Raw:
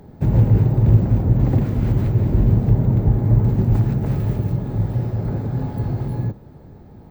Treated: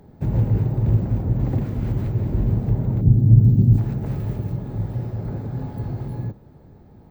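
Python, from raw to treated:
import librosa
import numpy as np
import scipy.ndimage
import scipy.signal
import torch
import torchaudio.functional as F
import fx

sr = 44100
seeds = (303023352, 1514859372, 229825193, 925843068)

y = fx.graphic_eq(x, sr, hz=(125, 250, 500, 1000, 2000), db=(9, 6, -4, -12, -12), at=(3.01, 3.78))
y = F.gain(torch.from_numpy(y), -5.0).numpy()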